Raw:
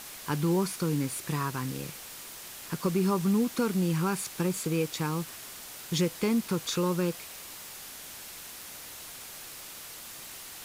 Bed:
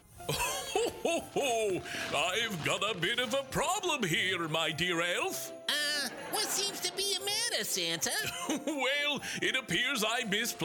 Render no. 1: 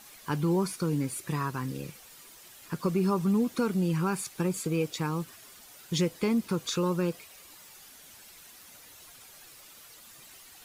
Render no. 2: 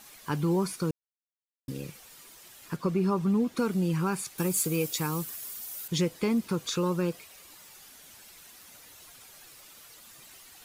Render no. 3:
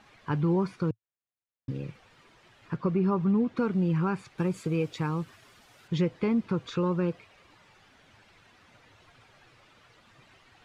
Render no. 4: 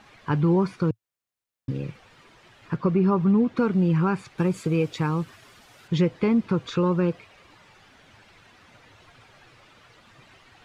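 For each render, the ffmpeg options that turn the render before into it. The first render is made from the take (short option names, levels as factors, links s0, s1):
-af "afftdn=nr=10:nf=-44"
-filter_complex "[0:a]asettb=1/sr,asplit=3[s0][s1][s2];[s0]atrim=end=2.764[s3];[s1]atrim=start=2.76:end=3.57,asetpts=PTS-STARTPTS,afade=t=in:d=0.004:c=qsin,afade=t=out:st=0.806:d=0.004:c=qsin,highshelf=f=5900:g=-9.5[s4];[s2]atrim=start=3.566[s5];[s3][s4]acrossfade=d=0.004:c1=hsin:c2=qsin[s6];[s6][s5]acrossfade=d=0.004:c1=qsin:c2=hsin,asettb=1/sr,asplit=3[s7][s8][s9];[s7]atrim=end=4.384[s10];[s8]atrim=start=4.38:end=5.88,asetpts=PTS-STARTPTS,afade=t=in:d=0.004:c=qsin,afade=t=out:st=1.496:d=0.004:c=qsin,aemphasis=mode=production:type=50fm[s11];[s9]atrim=start=5.876[s12];[s10][s11]acrossfade=d=0.004:c1=hsin:c2=qsin[s13];[s13][s12]acrossfade=d=0.004:c1=qsin:c2=hsin,asplit=3[s14][s15][s16];[s14]atrim=end=0.91,asetpts=PTS-STARTPTS,afade=t=out:st=0.906:d=0.004:c=hsin[s17];[s15]atrim=start=0.91:end=1.68,asetpts=PTS-STARTPTS,volume=0[s18];[s16]atrim=start=1.68,asetpts=PTS-STARTPTS,afade=t=in:d=0.004:c=hsin[s19];[s17][s18][s19]concat=n=3:v=0:a=1"
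-af "lowpass=2500,equalizer=f=110:t=o:w=0.64:g=8.5"
-af "volume=1.78"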